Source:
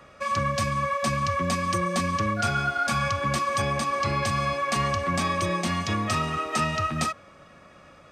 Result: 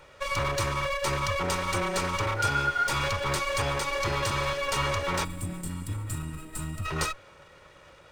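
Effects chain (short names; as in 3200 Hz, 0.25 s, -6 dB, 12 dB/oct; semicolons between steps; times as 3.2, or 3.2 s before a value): minimum comb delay 2.1 ms; spectral gain 5.24–6.86, 330–7100 Hz -17 dB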